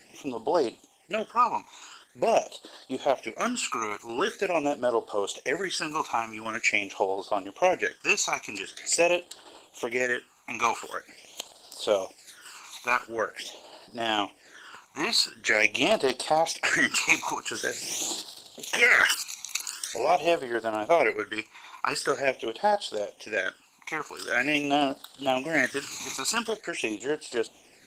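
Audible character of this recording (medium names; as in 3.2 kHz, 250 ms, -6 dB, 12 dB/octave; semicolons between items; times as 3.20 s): tremolo saw down 11 Hz, depth 40%; phasing stages 12, 0.45 Hz, lowest notch 530–2200 Hz; Opus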